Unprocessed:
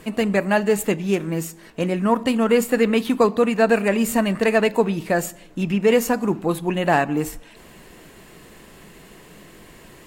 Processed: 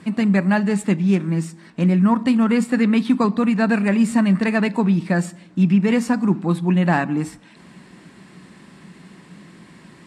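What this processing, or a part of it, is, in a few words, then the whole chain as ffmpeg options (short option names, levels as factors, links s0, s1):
car door speaker: -af "highpass=100,equalizer=f=180:t=q:w=4:g=10,equalizer=f=250:t=q:w=4:g=4,equalizer=f=460:t=q:w=4:g=-9,equalizer=f=660:t=q:w=4:g=-5,equalizer=f=2900:t=q:w=4:g=-5,equalizer=f=6700:t=q:w=4:g=-8,lowpass=f=8500:w=0.5412,lowpass=f=8500:w=1.3066"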